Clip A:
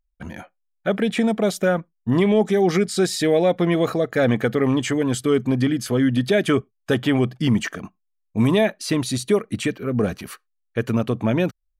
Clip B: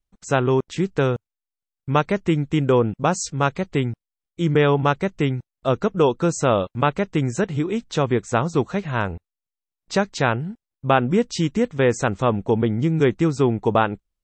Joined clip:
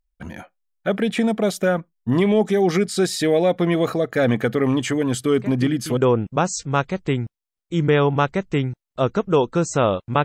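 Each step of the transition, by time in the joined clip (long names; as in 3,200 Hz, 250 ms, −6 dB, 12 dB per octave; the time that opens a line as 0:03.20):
clip A
0:05.36: mix in clip B from 0:02.03 0.61 s −13 dB
0:05.97: continue with clip B from 0:02.64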